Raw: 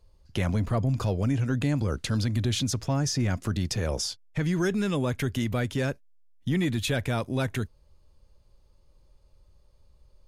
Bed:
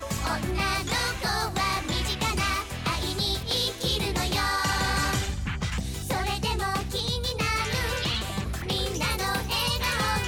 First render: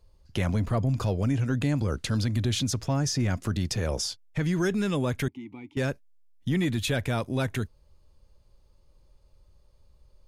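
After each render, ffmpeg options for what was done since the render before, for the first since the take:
-filter_complex "[0:a]asettb=1/sr,asplit=3[s0][s1][s2];[s0]atrim=end=5.284[s3];[s1]atrim=start=5.28:end=5.77,asetpts=PTS-STARTPTS,afade=t=in:d=0.004:c=qsin,afade=t=out:st=0.486:d=0.004:c=qsin,asplit=3[s4][s5][s6];[s4]bandpass=f=300:t=q:w=8,volume=1[s7];[s5]bandpass=f=870:t=q:w=8,volume=0.501[s8];[s6]bandpass=f=2240:t=q:w=8,volume=0.355[s9];[s7][s8][s9]amix=inputs=3:normalize=0[s10];[s2]atrim=start=5.766[s11];[s3][s10]acrossfade=d=0.004:c1=hsin:c2=qsin[s12];[s12][s11]acrossfade=d=0.004:c1=qsin:c2=hsin"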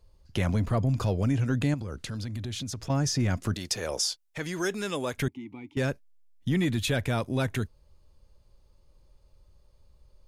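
-filter_complex "[0:a]asettb=1/sr,asplit=3[s0][s1][s2];[s0]atrim=end=1.744[s3];[s1]atrim=start=1.74:end=2.9,asetpts=PTS-STARTPTS,afade=t=in:d=0.004:c=qsin,afade=t=out:st=1.156:d=0.004:c=qsin,acompressor=threshold=0.0178:ratio=2.5:attack=3.2:release=140:knee=1:detection=peak[s4];[s2]atrim=start=2.896[s5];[s3][s4]acrossfade=d=0.004:c1=hsin:c2=qsin[s6];[s6][s5]acrossfade=d=0.004:c1=qsin:c2=hsin,asettb=1/sr,asplit=3[s7][s8][s9];[s7]atrim=end=3.544[s10];[s8]atrim=start=3.54:end=5.18,asetpts=PTS-STARTPTS,afade=t=in:d=0.004:c=qsin,afade=t=out:st=1.636:d=0.004:c=qsin,bass=f=250:g=-14,treble=f=4000:g=4[s11];[s9]atrim=start=5.176[s12];[s10][s11]acrossfade=d=0.004:c1=hsin:c2=qsin[s13];[s13][s12]acrossfade=d=0.004:c1=qsin:c2=hsin"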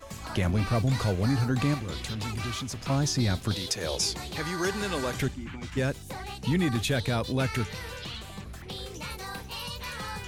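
-filter_complex "[1:a]volume=0.299[s0];[0:a][s0]amix=inputs=2:normalize=0"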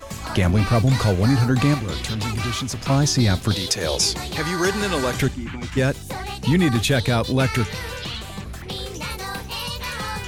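-af "volume=2.51"

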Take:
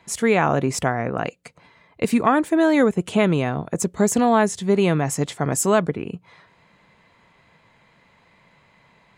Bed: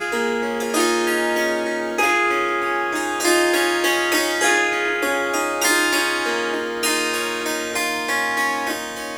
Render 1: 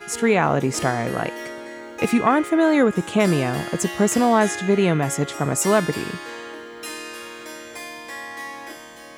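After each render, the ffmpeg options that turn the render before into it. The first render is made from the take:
-filter_complex "[1:a]volume=0.224[s0];[0:a][s0]amix=inputs=2:normalize=0"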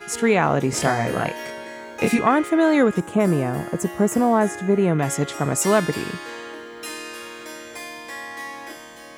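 -filter_complex "[0:a]asettb=1/sr,asplit=3[s0][s1][s2];[s0]atrim=end=0.704[s3];[s1]atrim=start=0.7:end=2.19,asetpts=PTS-STARTPTS,afade=t=in:d=0.004:c=qsin,afade=t=out:st=1.486:d=0.004:c=qsin,asplit=2[s4][s5];[s5]adelay=27,volume=0.708[s6];[s4][s6]amix=inputs=2:normalize=0,atrim=end_sample=65709[s7];[s2]atrim=start=2.186[s8];[s3][s7]acrossfade=d=0.004:c1=hsin:c2=qsin[s9];[s9][s8]acrossfade=d=0.004:c1=qsin:c2=hsin,asettb=1/sr,asplit=3[s10][s11][s12];[s10]atrim=end=3.004[s13];[s11]atrim=start=3:end=4.99,asetpts=PTS-STARTPTS,afade=t=in:d=0.004:c=qsin,afade=t=out:st=1.986:d=0.004:c=qsin,equalizer=f=3900:w=0.7:g=-13.5[s14];[s12]atrim=start=4.986[s15];[s13][s14]acrossfade=d=0.004:c1=hsin:c2=qsin[s16];[s16][s15]acrossfade=d=0.004:c1=qsin:c2=hsin"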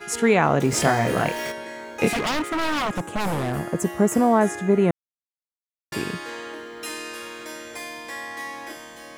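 -filter_complex "[0:a]asettb=1/sr,asplit=3[s0][s1][s2];[s0]atrim=end=0.604[s3];[s1]atrim=start=0.6:end=1.52,asetpts=PTS-STARTPTS,afade=t=in:d=0.004:c=qsin,afade=t=out:st=0.916:d=0.004:c=qsin,aeval=exprs='val(0)+0.5*0.0266*sgn(val(0))':c=same[s4];[s2]atrim=start=1.516[s5];[s3][s4]acrossfade=d=0.004:c1=hsin:c2=qsin[s6];[s6][s5]acrossfade=d=0.004:c1=qsin:c2=hsin,asettb=1/sr,asplit=3[s7][s8][s9];[s7]atrim=end=2.124[s10];[s8]atrim=start=2.12:end=3.6,asetpts=PTS-STARTPTS,afade=t=in:d=0.004:c=qsin,afade=t=out:st=1.476:d=0.004:c=qsin,aeval=exprs='0.112*(abs(mod(val(0)/0.112+3,4)-2)-1)':c=same[s11];[s9]atrim=start=3.596[s12];[s10][s11]acrossfade=d=0.004:c1=hsin:c2=qsin[s13];[s13][s12]acrossfade=d=0.004:c1=qsin:c2=hsin,asplit=3[s14][s15][s16];[s14]atrim=end=4.91,asetpts=PTS-STARTPTS,afade=t=out:st=4.906:d=0.004:c=hsin[s17];[s15]atrim=start=4.91:end=5.92,asetpts=PTS-STARTPTS,volume=0[s18];[s16]atrim=start=5.92,asetpts=PTS-STARTPTS,afade=t=in:d=0.004:c=hsin[s19];[s17][s18][s19]concat=n=3:v=0:a=1"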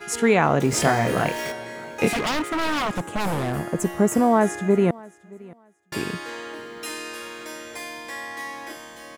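-af "aecho=1:1:623|1246:0.0708|0.0135"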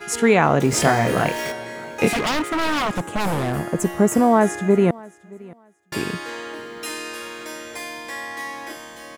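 -af "volume=1.33"

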